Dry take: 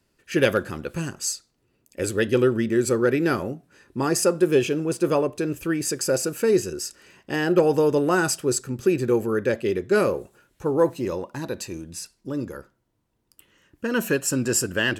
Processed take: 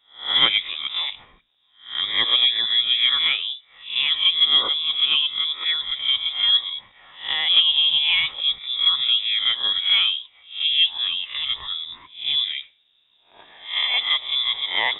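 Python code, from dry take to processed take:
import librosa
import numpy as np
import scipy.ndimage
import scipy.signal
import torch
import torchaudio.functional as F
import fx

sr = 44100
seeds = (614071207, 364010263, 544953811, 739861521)

y = fx.spec_swells(x, sr, rise_s=0.41)
y = fx.recorder_agc(y, sr, target_db=-13.5, rise_db_per_s=5.4, max_gain_db=30)
y = fx.freq_invert(y, sr, carrier_hz=3700)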